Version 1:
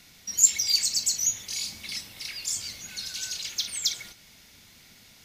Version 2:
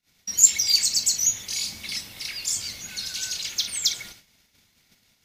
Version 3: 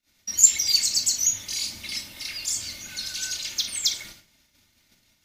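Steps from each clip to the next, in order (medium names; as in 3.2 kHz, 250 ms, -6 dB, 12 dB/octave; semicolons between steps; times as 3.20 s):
gate -51 dBFS, range -32 dB; trim +3.5 dB
reverberation, pre-delay 3 ms, DRR 4.5 dB; trim -2 dB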